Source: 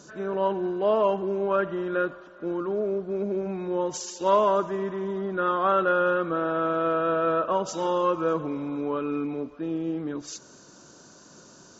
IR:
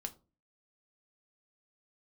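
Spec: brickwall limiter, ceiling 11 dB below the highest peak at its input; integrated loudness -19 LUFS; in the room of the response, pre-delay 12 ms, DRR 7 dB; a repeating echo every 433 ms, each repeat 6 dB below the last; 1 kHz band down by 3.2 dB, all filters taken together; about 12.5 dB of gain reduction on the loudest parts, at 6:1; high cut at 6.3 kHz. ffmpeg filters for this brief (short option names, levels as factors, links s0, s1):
-filter_complex "[0:a]lowpass=6300,equalizer=f=1000:t=o:g=-4,acompressor=threshold=0.0224:ratio=6,alimiter=level_in=3.35:limit=0.0631:level=0:latency=1,volume=0.299,aecho=1:1:433|866|1299|1732|2165|2598:0.501|0.251|0.125|0.0626|0.0313|0.0157,asplit=2[s0][s1];[1:a]atrim=start_sample=2205,adelay=12[s2];[s1][s2]afir=irnorm=-1:irlink=0,volume=0.562[s3];[s0][s3]amix=inputs=2:normalize=0,volume=12.6"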